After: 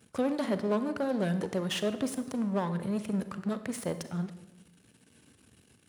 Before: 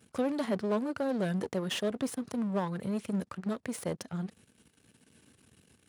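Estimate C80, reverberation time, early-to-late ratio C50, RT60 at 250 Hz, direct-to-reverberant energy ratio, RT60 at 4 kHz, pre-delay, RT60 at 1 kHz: 14.0 dB, 1.0 s, 12.0 dB, 1.3 s, 11.0 dB, 0.80 s, 34 ms, 0.90 s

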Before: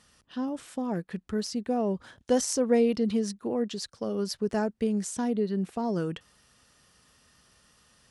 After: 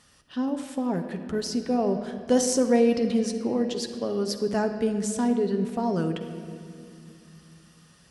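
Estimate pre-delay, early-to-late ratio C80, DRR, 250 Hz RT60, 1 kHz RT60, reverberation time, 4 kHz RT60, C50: 7 ms, 9.0 dB, 5.5 dB, 3.5 s, 2.2 s, 2.5 s, 1.8 s, 7.5 dB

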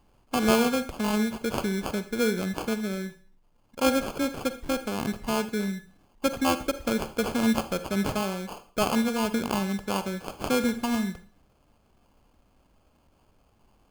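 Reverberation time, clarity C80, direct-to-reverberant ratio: 0.45 s, 17.0 dB, 11.0 dB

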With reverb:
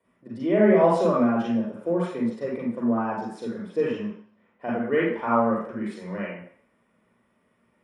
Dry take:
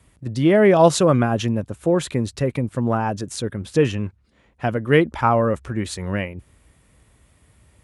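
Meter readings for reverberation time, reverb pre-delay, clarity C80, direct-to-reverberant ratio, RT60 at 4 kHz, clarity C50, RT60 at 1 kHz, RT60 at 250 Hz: 0.60 s, 38 ms, 5.0 dB, -5.0 dB, 0.60 s, -1.0 dB, 0.65 s, 0.45 s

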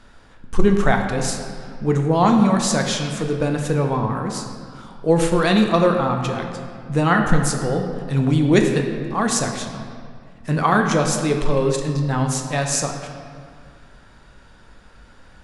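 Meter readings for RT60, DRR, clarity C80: 2.0 s, 3.0 dB, 6.0 dB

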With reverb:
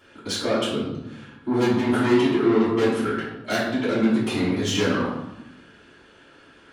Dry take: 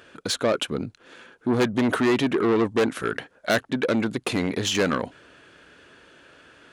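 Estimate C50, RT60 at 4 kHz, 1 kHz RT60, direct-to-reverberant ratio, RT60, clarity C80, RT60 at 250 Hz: 1.5 dB, 0.70 s, 0.85 s, -10.5 dB, 0.90 s, 5.0 dB, 1.3 s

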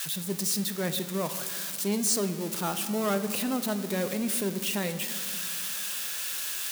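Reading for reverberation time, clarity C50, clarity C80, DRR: 2.2 s, 11.0 dB, 12.0 dB, 9.0 dB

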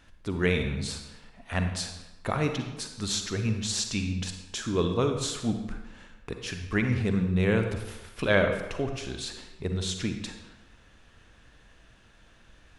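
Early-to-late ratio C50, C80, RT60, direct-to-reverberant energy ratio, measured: 6.0 dB, 8.5 dB, 1.0 s, 5.5 dB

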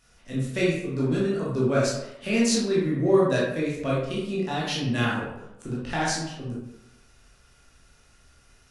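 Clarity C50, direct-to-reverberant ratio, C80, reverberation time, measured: 0.5 dB, -7.0 dB, 4.5 dB, 0.85 s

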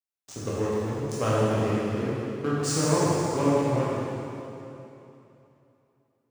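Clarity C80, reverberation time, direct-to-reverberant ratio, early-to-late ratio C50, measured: -2.5 dB, 2.9 s, -8.5 dB, -4.5 dB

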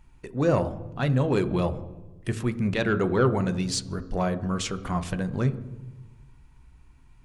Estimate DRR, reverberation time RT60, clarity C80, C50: 10.0 dB, 1.2 s, 17.0 dB, 15.0 dB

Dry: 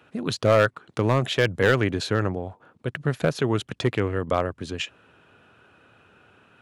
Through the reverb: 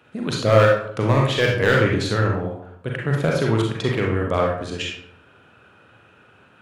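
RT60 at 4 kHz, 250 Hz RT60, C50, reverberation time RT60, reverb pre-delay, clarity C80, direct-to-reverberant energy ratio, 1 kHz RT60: 0.45 s, 0.75 s, 2.5 dB, 0.65 s, 34 ms, 6.5 dB, -1.5 dB, 0.60 s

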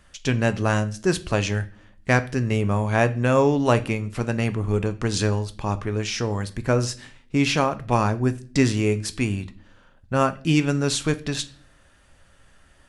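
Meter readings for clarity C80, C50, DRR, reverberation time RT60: 22.5 dB, 18.0 dB, 10.5 dB, 0.45 s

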